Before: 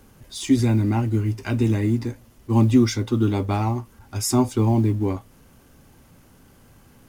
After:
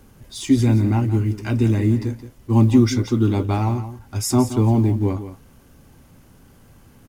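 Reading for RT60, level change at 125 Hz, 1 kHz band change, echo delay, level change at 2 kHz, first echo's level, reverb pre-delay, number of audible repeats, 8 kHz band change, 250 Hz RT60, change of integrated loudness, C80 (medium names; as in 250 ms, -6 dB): no reverb, +3.0 dB, +0.5 dB, 173 ms, +0.5 dB, -12.0 dB, no reverb, 1, +0.5 dB, no reverb, +2.0 dB, no reverb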